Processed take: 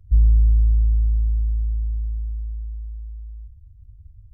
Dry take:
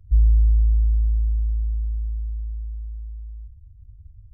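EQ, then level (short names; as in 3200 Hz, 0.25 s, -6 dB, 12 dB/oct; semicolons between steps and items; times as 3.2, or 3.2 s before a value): dynamic EQ 110 Hz, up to +6 dB, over -37 dBFS, Q 1.4; 0.0 dB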